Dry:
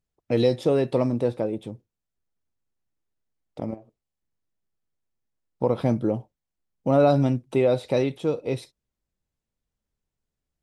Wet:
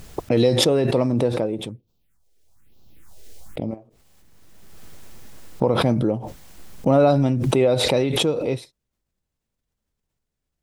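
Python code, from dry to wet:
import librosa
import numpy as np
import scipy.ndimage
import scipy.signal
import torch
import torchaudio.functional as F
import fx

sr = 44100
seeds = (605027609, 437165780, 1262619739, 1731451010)

y = fx.phaser_stages(x, sr, stages=4, low_hz=170.0, high_hz=1900.0, hz=1.1, feedback_pct=25, at=(1.69, 3.71))
y = fx.pre_swell(y, sr, db_per_s=24.0)
y = y * 10.0 ** (2.0 / 20.0)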